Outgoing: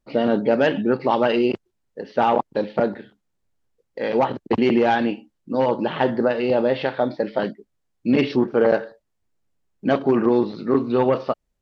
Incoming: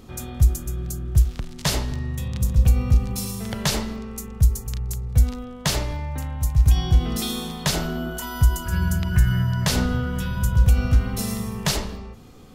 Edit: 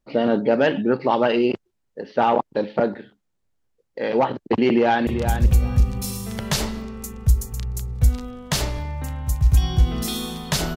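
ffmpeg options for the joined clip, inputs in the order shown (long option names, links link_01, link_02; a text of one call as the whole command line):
ffmpeg -i cue0.wav -i cue1.wav -filter_complex "[0:a]apad=whole_dur=10.76,atrim=end=10.76,atrim=end=5.072[link_01];[1:a]atrim=start=2.208:end=7.9[link_02];[link_01][link_02]acrossfade=duration=0.004:curve1=hsin:curve2=hsin,asplit=2[link_03][link_04];[link_04]afade=type=in:start_time=4.69:duration=0.01,afade=type=out:start_time=5.07:duration=0.01,aecho=0:1:390|780:0.398107|0.0597161[link_05];[link_03][link_05]amix=inputs=2:normalize=0" out.wav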